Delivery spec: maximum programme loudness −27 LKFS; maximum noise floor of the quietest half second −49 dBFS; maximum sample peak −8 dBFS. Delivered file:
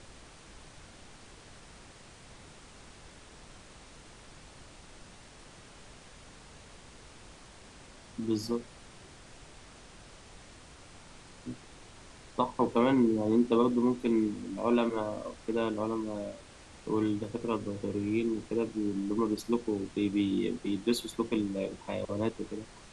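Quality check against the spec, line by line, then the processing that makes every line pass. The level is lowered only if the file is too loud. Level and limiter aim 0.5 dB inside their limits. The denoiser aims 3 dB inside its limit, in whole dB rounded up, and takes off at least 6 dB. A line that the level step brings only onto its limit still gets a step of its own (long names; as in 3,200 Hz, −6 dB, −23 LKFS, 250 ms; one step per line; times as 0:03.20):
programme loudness −31.5 LKFS: in spec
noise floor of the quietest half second −52 dBFS: in spec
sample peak −13.0 dBFS: in spec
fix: no processing needed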